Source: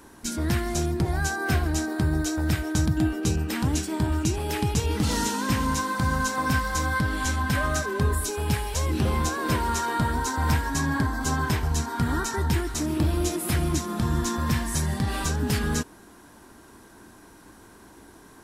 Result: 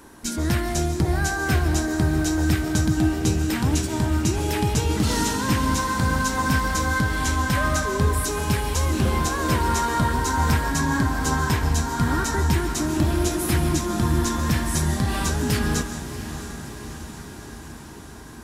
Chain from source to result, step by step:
feedback delay with all-pass diffusion 665 ms, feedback 67%, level −11.5 dB
on a send at −11 dB: convolution reverb, pre-delay 105 ms
on the sum: level +2.5 dB

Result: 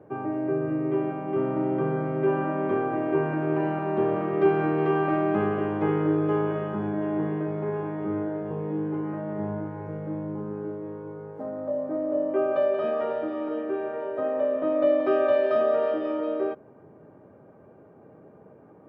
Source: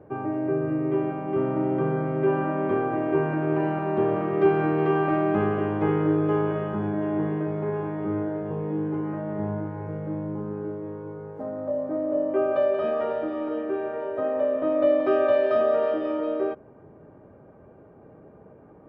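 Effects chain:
high-pass filter 110 Hz
level −1 dB

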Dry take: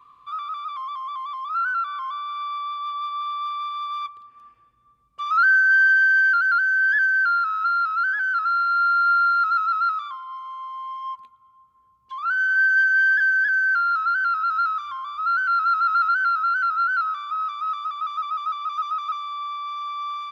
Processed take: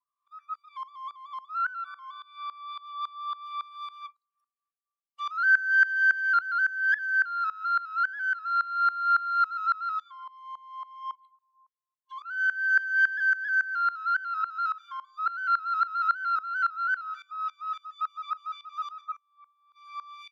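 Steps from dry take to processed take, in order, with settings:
0:19.01–0:19.76: low-pass filter 1,700 Hz 6 dB per octave
noise reduction from a noise print of the clip's start 27 dB
high-pass filter 960 Hz 24 dB per octave
tremolo with a ramp in dB swelling 3.6 Hz, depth 20 dB

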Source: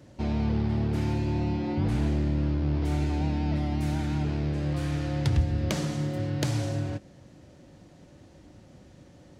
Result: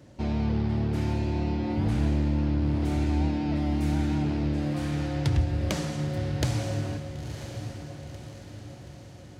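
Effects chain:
feedback delay with all-pass diffusion 987 ms, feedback 51%, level −8.5 dB

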